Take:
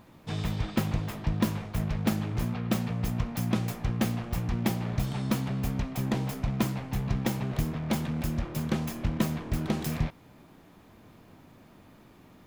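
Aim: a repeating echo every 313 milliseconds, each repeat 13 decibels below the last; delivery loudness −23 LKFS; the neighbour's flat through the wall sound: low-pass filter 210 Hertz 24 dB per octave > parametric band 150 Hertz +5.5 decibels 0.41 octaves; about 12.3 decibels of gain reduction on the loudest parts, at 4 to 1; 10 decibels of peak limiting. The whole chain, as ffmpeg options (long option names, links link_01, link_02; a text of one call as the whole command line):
ffmpeg -i in.wav -af "acompressor=threshold=-38dB:ratio=4,alimiter=level_in=9.5dB:limit=-24dB:level=0:latency=1,volume=-9.5dB,lowpass=frequency=210:width=0.5412,lowpass=frequency=210:width=1.3066,equalizer=frequency=150:width_type=o:width=0.41:gain=5.5,aecho=1:1:313|626|939:0.224|0.0493|0.0108,volume=19dB" out.wav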